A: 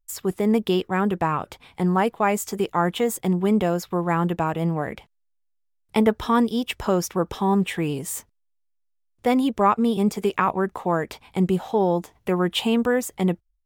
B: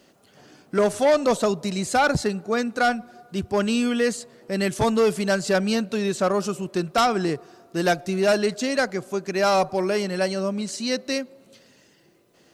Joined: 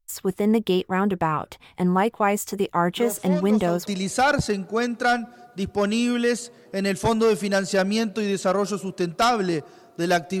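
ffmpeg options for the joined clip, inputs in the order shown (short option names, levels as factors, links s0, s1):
-filter_complex "[1:a]asplit=2[s0][s1];[0:a]apad=whole_dur=10.4,atrim=end=10.4,atrim=end=3.862[s2];[s1]atrim=start=1.618:end=8.16[s3];[s0]atrim=start=0.65:end=1.62,asetpts=PTS-STARTPTS,volume=0.251,afade=t=in:d=0.004:c=hsin,afade=t=out:st=0.966:d=0.004:c=hsin,adelay=2890[s4];[s2][s3]acrossfade=d=0.004:c1=hsin:c2=hsin[s5];[s5][s4]amix=inputs=2:normalize=0"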